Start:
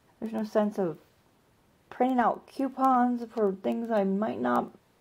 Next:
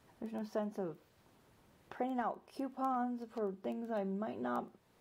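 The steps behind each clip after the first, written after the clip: compression 1.5:1, threshold -50 dBFS, peak gain reduction 11 dB; trim -2 dB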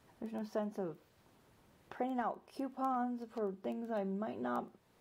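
no audible change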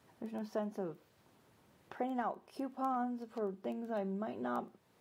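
high-pass 80 Hz

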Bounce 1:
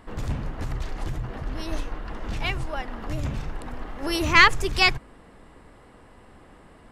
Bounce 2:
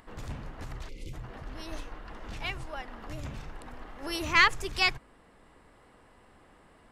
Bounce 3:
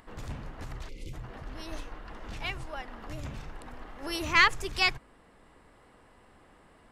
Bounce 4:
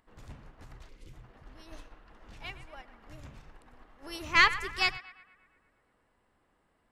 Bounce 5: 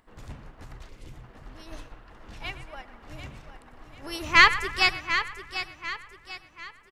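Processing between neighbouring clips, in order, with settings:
time-frequency box 0.89–1.13 s, 570–2000 Hz -26 dB; bass shelf 460 Hz -5 dB; upward compressor, threshold -48 dBFS; trim -6 dB
no audible change
band-passed feedback delay 115 ms, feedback 70%, band-pass 1.5 kHz, level -9.5 dB; upward expansion 1.5:1, over -47 dBFS
feedback delay 743 ms, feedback 39%, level -10.5 dB; trim +6 dB

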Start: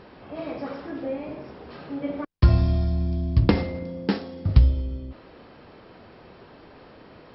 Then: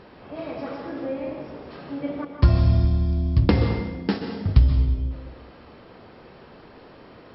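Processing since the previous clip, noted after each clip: plate-style reverb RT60 1.1 s, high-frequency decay 0.75×, pre-delay 115 ms, DRR 5 dB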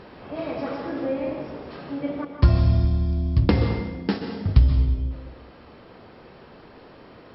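gain riding within 3 dB 2 s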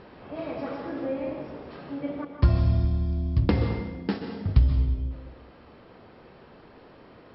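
distance through air 77 m; trim -3.5 dB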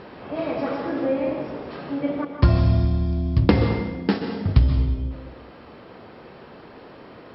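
bass shelf 62 Hz -11 dB; trim +7.5 dB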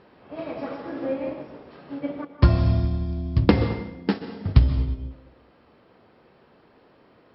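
upward expansion 1.5:1, over -38 dBFS; trim +1.5 dB

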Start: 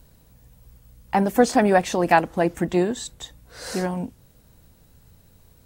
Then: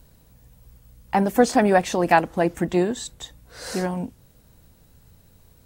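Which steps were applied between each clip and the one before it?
no audible change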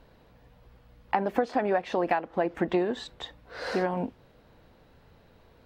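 tone controls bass -13 dB, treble +4 dB; compression 16:1, threshold -27 dBFS, peak gain reduction 17 dB; distance through air 360 m; trim +6.5 dB

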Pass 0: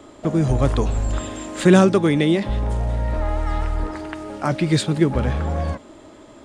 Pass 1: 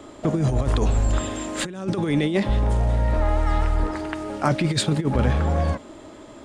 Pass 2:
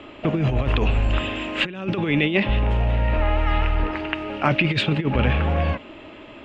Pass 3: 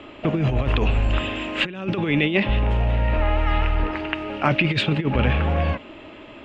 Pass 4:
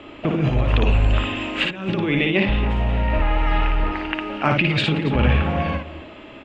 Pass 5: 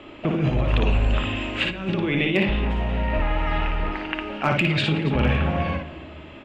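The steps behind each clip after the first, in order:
compressor with a negative ratio -19 dBFS, ratio -0.5
resonant low-pass 2.7 kHz, resonance Q 5.7
no audible change
multi-tap echo 57/279 ms -4/-16.5 dB
hard clipper -8 dBFS, distortion -33 dB; reverberation RT60 1.0 s, pre-delay 5 ms, DRR 11 dB; trim -2.5 dB

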